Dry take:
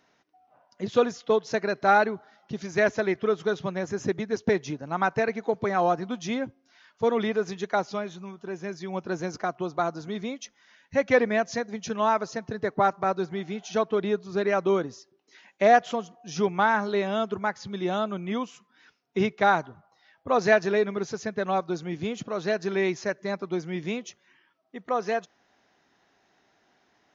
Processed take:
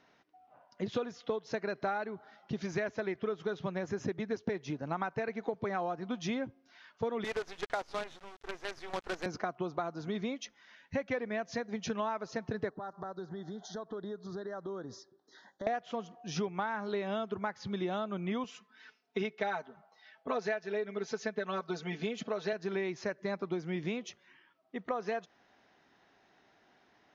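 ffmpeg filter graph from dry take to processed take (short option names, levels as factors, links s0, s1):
-filter_complex "[0:a]asettb=1/sr,asplit=3[s0][s1][s2];[s0]atrim=end=7.244[s3];[s1]atrim=start=7.24:end=9.26,asetpts=PTS-STARTPTS,afade=t=in:d=0.004:c=qsin,afade=t=out:st=2.016:d=0.004:c=qsin,highpass=470,acrusher=bits=6:dc=4:mix=0:aa=0.000001[s4];[s2]atrim=start=9.256[s5];[s3][s4]acrossfade=d=0.004:c1=hsin:c2=qsin[s6];[s6][s5]acrossfade=d=0.004:c1=qsin:c2=hsin,asettb=1/sr,asplit=3[s7][s8][s9];[s7]atrim=end=12.694[s10];[s8]atrim=start=12.69:end=15.67,asetpts=PTS-STARTPTS,afade=t=in:d=0.004:c=qsin,afade=t=out:st=2.976:d=0.004:c=qsin,acompressor=threshold=0.0112:ratio=5:attack=3.2:release=140:knee=1:detection=peak,asuperstop=centerf=2500:order=8:qfactor=1.6[s11];[s9]atrim=start=15.666[s12];[s10][s11]acrossfade=d=0.004:c1=hsin:c2=qsin[s13];[s13][s12]acrossfade=d=0.004:c1=qsin:c2=hsin,asettb=1/sr,asplit=3[s14][s15][s16];[s14]atrim=end=18.444[s17];[s15]atrim=start=18.44:end=22.53,asetpts=PTS-STARTPTS,afade=t=in:d=0.004:c=qsin,afade=t=out:st=4.086:d=0.004:c=qsin,highpass=f=420:p=1,equalizer=f=1100:t=o:w=0.42:g=-3.5,aecho=1:1:4.6:0.92,atrim=end_sample=180369[s18];[s16]atrim=start=22.526[s19];[s17][s18]acrossfade=d=0.004:c1=hsin:c2=qsin[s20];[s20][s19]acrossfade=d=0.004:c1=qsin:c2=hsin,lowpass=4900,acompressor=threshold=0.0282:ratio=10"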